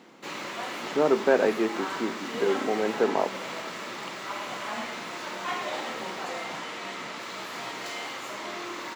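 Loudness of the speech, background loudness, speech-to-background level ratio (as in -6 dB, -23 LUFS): -26.5 LUFS, -34.5 LUFS, 8.0 dB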